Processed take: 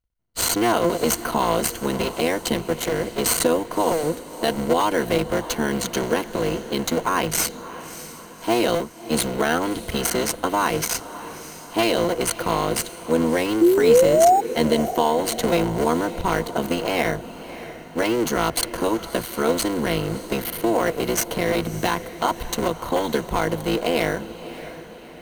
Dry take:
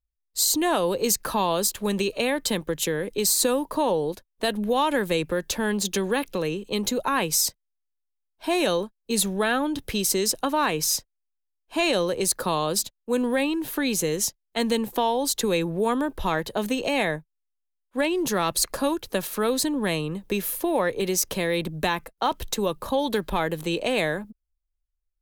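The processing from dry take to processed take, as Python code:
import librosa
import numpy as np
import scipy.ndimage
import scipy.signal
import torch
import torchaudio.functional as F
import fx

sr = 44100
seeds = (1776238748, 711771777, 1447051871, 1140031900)

p1 = fx.cycle_switch(x, sr, every=3, mode='muted')
p2 = fx.spec_paint(p1, sr, seeds[0], shape='rise', start_s=13.61, length_s=0.8, low_hz=330.0, high_hz=820.0, level_db=-19.0)
p3 = fx.sample_hold(p2, sr, seeds[1], rate_hz=7600.0, jitter_pct=0)
p4 = p2 + (p3 * librosa.db_to_amplitude(-5.0))
p5 = fx.ripple_eq(p4, sr, per_octave=1.9, db=7)
y = fx.echo_diffused(p5, sr, ms=619, feedback_pct=50, wet_db=-14.0)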